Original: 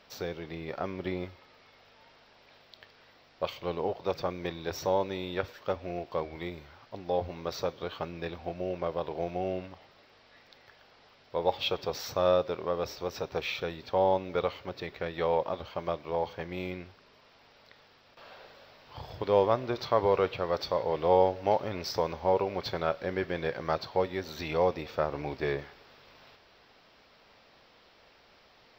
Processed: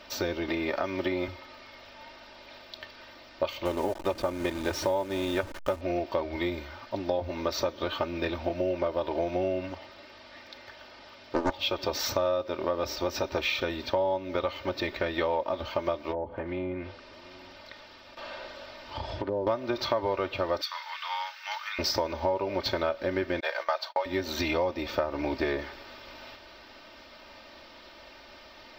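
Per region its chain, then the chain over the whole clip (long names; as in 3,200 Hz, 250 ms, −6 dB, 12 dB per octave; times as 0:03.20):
0:00.48–0:01.28: low-shelf EQ 340 Hz −6.5 dB + multiband upward and downward compressor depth 70%
0:03.65–0:05.81: hold until the input has moved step −41 dBFS + high-shelf EQ 7,200 Hz −7 dB
0:09.69–0:11.56: high-pass filter 44 Hz + highs frequency-modulated by the lows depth 0.92 ms
0:16.11–0:19.47: treble cut that deepens with the level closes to 540 Hz, closed at −28.5 dBFS + downward compressor 2 to 1, threshold −41 dBFS + single-tap delay 734 ms −21 dB
0:20.61–0:21.79: Butterworth high-pass 1,200 Hz + gain into a clipping stage and back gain 29.5 dB
0:23.40–0:24.06: inverse Chebyshev high-pass filter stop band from 230 Hz, stop band 50 dB + noise gate −46 dBFS, range −38 dB
whole clip: comb filter 3.3 ms, depth 73%; downward compressor 6 to 1, threshold −33 dBFS; level +8 dB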